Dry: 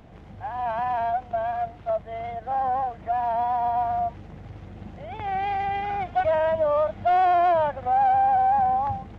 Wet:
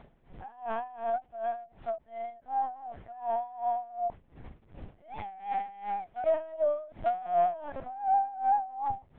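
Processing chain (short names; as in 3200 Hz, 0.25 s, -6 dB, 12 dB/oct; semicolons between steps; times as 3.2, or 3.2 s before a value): LPC vocoder at 8 kHz pitch kept; dB-linear tremolo 2.7 Hz, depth 19 dB; gain -3 dB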